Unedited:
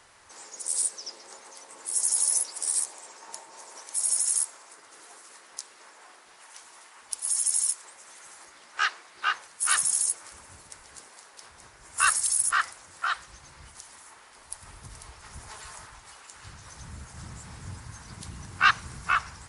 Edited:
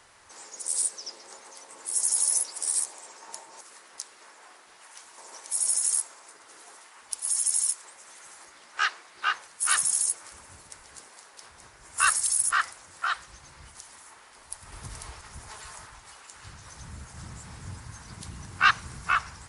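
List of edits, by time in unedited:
5.20–6.77 s: move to 3.61 s
14.72–15.21 s: gain +4.5 dB

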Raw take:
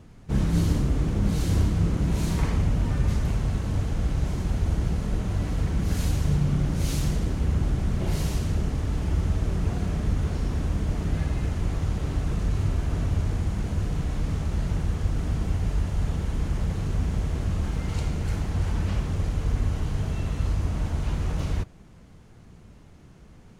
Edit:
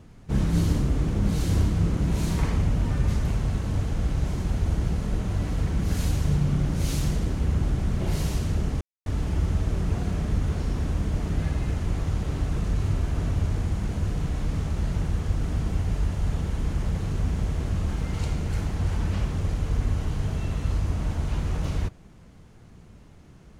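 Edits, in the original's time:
8.81 s: insert silence 0.25 s

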